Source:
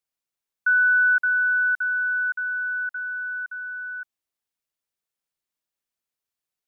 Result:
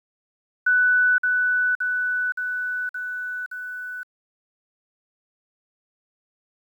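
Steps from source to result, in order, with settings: sample gate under -45.5 dBFS

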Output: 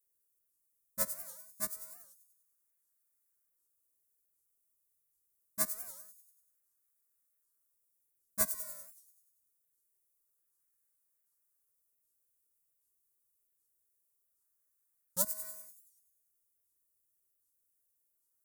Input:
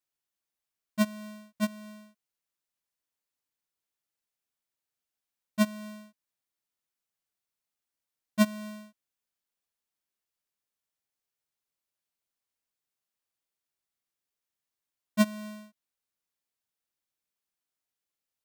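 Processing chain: EQ curve 190 Hz 0 dB, 2800 Hz -20 dB, 10000 Hz +1 dB; in parallel at -10 dB: decimation with a swept rate 32×, swing 160% 0.25 Hz; on the sum: high shelf 3100 Hz +11 dB; fixed phaser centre 800 Hz, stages 6; on a send: thin delay 96 ms, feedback 55%, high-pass 5600 Hz, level -8 dB; on the sum: record warp 78 rpm, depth 250 cents

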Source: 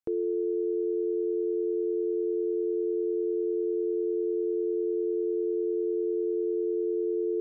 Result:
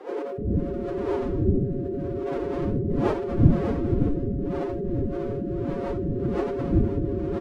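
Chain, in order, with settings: wind noise 250 Hz -25 dBFS; bands offset in time highs, lows 0.38 s, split 330 Hz; formant-preserving pitch shift +8 st

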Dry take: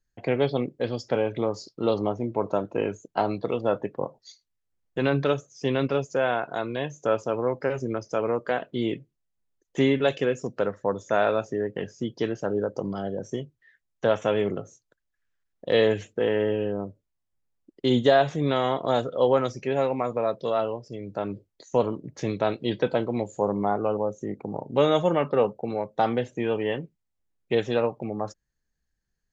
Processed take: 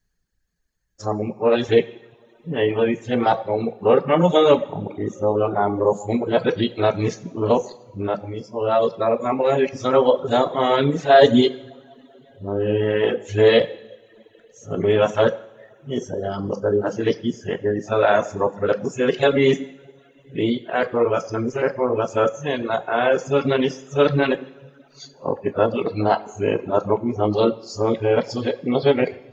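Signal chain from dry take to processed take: whole clip reversed; two-slope reverb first 0.85 s, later 2.9 s, from -18 dB, DRR 3.5 dB; reverb removal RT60 0.87 s; gain +6 dB

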